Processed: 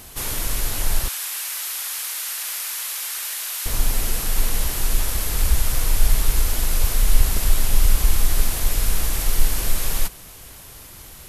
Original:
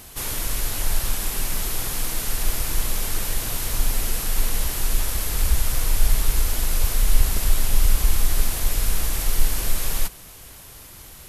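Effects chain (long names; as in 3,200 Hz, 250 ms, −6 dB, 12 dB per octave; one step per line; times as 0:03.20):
0:01.08–0:03.66: high-pass filter 1,300 Hz 12 dB per octave
level +1.5 dB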